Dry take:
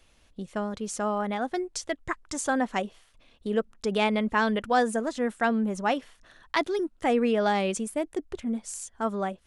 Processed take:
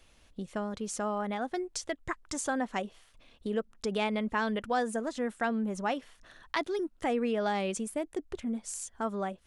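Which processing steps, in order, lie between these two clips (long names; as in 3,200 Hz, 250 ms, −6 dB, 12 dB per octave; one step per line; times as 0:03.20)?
downward compressor 1.5 to 1, threshold −37 dBFS, peak gain reduction 7 dB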